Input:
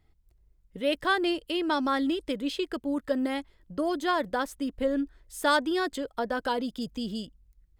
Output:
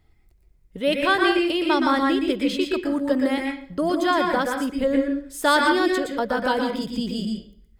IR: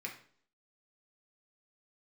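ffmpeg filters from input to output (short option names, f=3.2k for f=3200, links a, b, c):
-filter_complex "[0:a]asplit=2[a][b];[1:a]atrim=start_sample=2205,adelay=117[c];[b][c]afir=irnorm=-1:irlink=0,volume=0dB[d];[a][d]amix=inputs=2:normalize=0,volume=5dB"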